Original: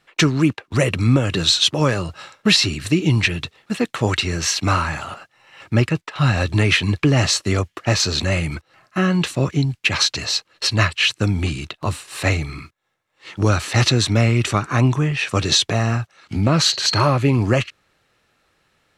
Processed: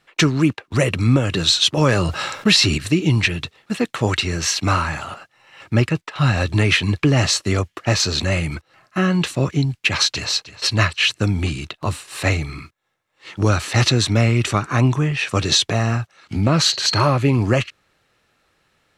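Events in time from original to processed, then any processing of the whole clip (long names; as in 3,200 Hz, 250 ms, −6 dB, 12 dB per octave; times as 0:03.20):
0:01.77–0:02.78: envelope flattener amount 50%
0:09.76–0:10.30: delay throw 310 ms, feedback 30%, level −16 dB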